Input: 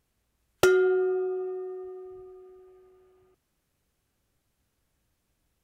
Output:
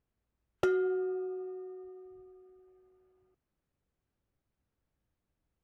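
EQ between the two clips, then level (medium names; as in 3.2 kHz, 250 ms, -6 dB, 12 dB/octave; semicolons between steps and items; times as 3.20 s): treble shelf 2.5 kHz -10 dB; treble shelf 8.1 kHz -9.5 dB; -7.5 dB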